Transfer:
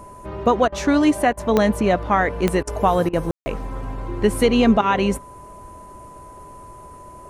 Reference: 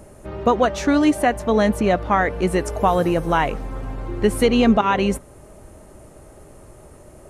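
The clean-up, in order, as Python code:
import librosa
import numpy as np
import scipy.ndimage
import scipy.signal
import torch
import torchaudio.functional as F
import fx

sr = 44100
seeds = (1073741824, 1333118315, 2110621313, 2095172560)

y = fx.fix_declick_ar(x, sr, threshold=10.0)
y = fx.notch(y, sr, hz=1000.0, q=30.0)
y = fx.fix_ambience(y, sr, seeds[0], print_start_s=6.73, print_end_s=7.23, start_s=3.31, end_s=3.46)
y = fx.fix_interpolate(y, sr, at_s=(0.68, 1.33, 2.63, 3.09), length_ms=41.0)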